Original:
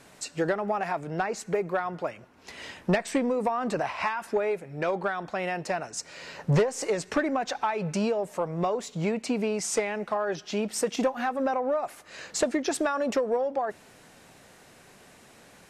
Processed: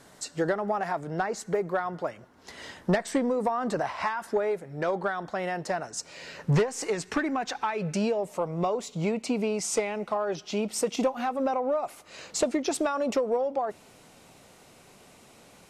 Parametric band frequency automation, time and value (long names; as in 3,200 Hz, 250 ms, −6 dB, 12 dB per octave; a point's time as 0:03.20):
parametric band −9 dB 0.31 octaves
0:05.94 2,500 Hz
0:06.54 570 Hz
0:07.51 570 Hz
0:08.32 1,700 Hz